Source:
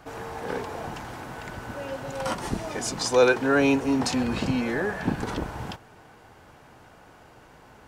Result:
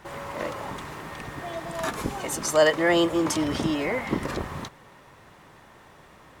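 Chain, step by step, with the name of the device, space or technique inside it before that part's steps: nightcore (tape speed +23%)

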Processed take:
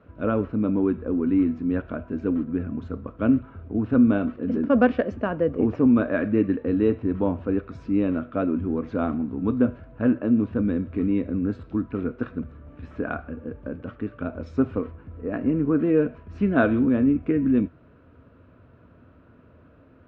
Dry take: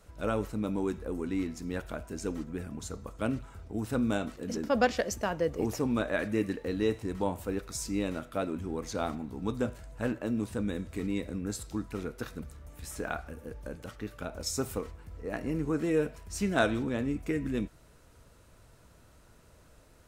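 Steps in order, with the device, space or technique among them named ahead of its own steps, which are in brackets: bass cabinet (cabinet simulation 86–2300 Hz, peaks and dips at 87 Hz +6 dB, 260 Hz +9 dB, 840 Hz -8 dB, 2 kHz -9 dB); trim +6.5 dB

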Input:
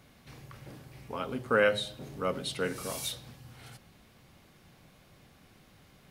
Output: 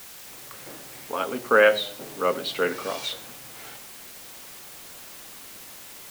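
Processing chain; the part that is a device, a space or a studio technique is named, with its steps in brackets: dictaphone (band-pass 330–3900 Hz; level rider gain up to 9 dB; wow and flutter; white noise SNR 15 dB)

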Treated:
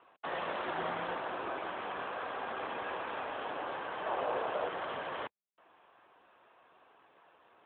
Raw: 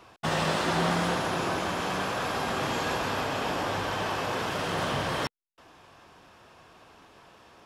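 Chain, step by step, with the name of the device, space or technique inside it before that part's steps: 4.06–4.69 s: dynamic bell 570 Hz, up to +8 dB, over -47 dBFS, Q 0.93; telephone (band-pass 360–3100 Hz; trim -6.5 dB; AMR-NB 12.2 kbps 8 kHz)

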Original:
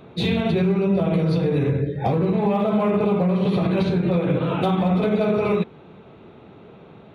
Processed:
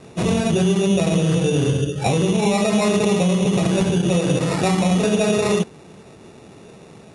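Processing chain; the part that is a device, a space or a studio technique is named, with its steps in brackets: crushed at another speed (playback speed 2×; sample-and-hold 7×; playback speed 0.5×); trim +2 dB

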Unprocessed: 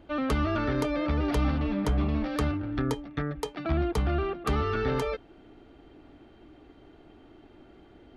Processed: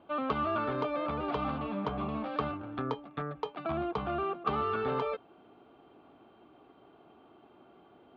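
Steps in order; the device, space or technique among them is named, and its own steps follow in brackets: kitchen radio (cabinet simulation 170–3500 Hz, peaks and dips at 300 Hz -6 dB, 740 Hz +4 dB, 1.1 kHz +8 dB, 1.9 kHz -9 dB); trim -3 dB

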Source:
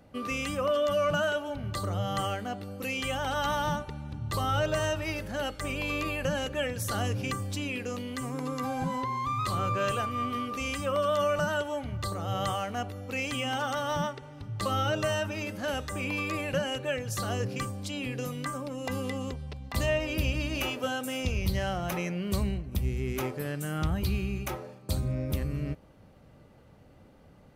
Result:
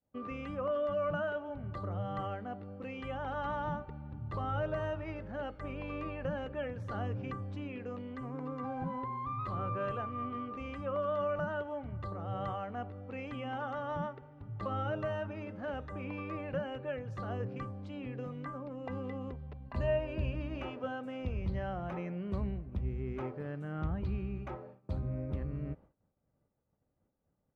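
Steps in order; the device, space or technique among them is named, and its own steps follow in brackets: hearing-loss simulation (low-pass 1.5 kHz 12 dB/octave; expander -43 dBFS); 19.65–20.35 s: rippled EQ curve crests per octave 1.4, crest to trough 8 dB; trim -6 dB

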